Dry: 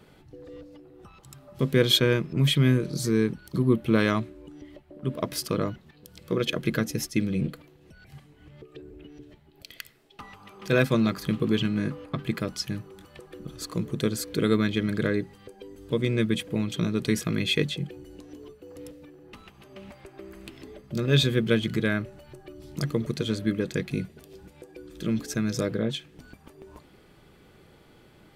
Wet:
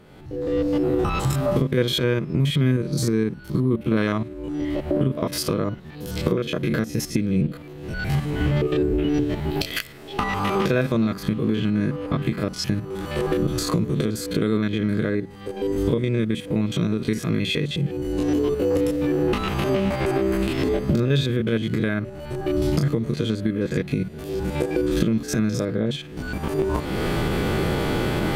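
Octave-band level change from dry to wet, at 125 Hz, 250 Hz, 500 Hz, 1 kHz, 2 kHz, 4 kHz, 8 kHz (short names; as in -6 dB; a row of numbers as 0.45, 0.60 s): +5.5, +5.5, +6.0, +9.0, +2.5, 0.0, +3.0 dB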